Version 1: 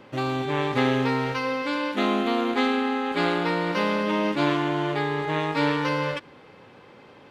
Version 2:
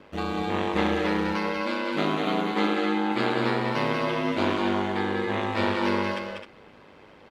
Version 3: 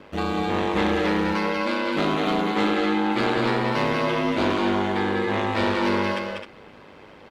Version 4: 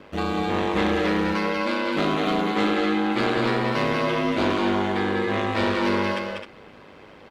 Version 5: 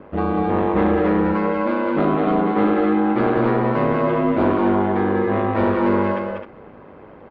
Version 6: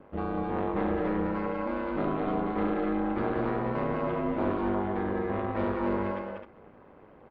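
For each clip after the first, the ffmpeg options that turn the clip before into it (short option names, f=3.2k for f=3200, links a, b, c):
-af "aeval=exprs='val(0)*sin(2*PI*50*n/s)':c=same,aecho=1:1:192.4|259.5:0.562|0.355"
-af "asoftclip=type=tanh:threshold=-18.5dB,volume=4.5dB"
-af "bandreject=f=880:w=24"
-af "lowpass=1.2k,volume=5.5dB"
-af "tremolo=f=290:d=0.571,volume=-8.5dB"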